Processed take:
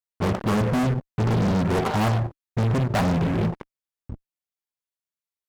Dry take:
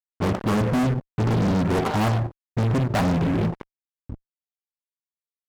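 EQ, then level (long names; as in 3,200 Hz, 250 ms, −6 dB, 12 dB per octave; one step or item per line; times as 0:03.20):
parametric band 290 Hz −6.5 dB 0.2 octaves
0.0 dB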